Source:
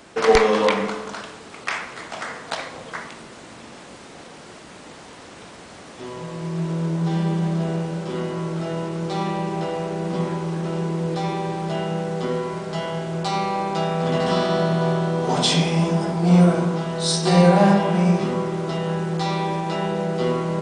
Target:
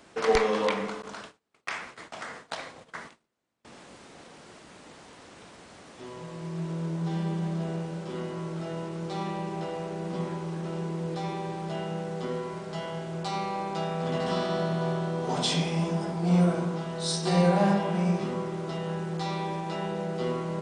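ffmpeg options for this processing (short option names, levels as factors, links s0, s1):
-filter_complex "[0:a]asettb=1/sr,asplit=3[s0][s1][s2];[s0]atrim=end=1.024[s3];[s1]atrim=start=1.02:end=3.65,asetpts=PTS-STARTPTS,afade=t=in:d=0.004:c=qsin,afade=t=out:st=2.626:d=0.004:c=qsin,agate=range=0.02:threshold=0.0178:ratio=16:detection=peak[s4];[s2]atrim=start=3.646[s5];[s3][s4]acrossfade=d=0.004:c1=hsin:c2=qsin[s6];[s6][s5]acrossfade=d=0.004:c1=qsin:c2=hsin,volume=0.398"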